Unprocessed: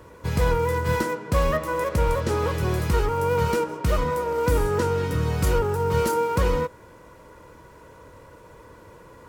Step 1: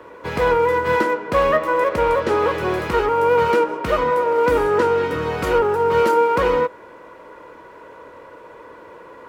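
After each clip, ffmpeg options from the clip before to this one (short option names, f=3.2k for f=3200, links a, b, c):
-filter_complex "[0:a]acrossover=split=260 3500:gain=0.126 1 0.178[a][b][c];[a][b][c]amix=inputs=3:normalize=0,volume=8dB"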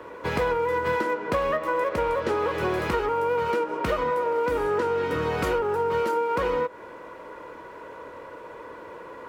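-af "acompressor=threshold=-22dB:ratio=6"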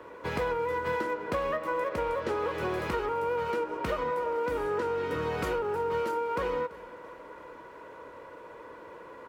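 -af "aecho=1:1:336|672|1008|1344|1680:0.112|0.0628|0.0352|0.0197|0.011,volume=-5.5dB"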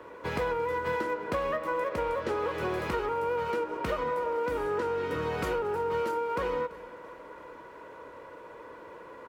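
-af "aecho=1:1:227:0.0668"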